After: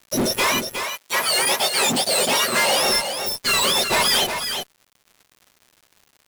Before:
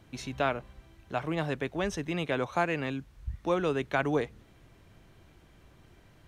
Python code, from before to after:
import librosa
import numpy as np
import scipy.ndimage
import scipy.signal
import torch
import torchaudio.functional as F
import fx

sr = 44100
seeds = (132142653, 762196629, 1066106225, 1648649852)

y = fx.octave_mirror(x, sr, pivot_hz=1200.0)
y = fx.fuzz(y, sr, gain_db=44.0, gate_db=-50.0)
y = fx.dmg_crackle(y, sr, seeds[0], per_s=130.0, level_db=-34.0)
y = fx.highpass(y, sr, hz=fx.line((0.46, 560.0), (2.81, 180.0)), slope=6, at=(0.46, 2.81), fade=0.02)
y = y + 10.0 ** (-7.0 / 20.0) * np.pad(y, (int(363 * sr / 1000.0), 0))[:len(y)]
y = y * librosa.db_to_amplitude(-4.0)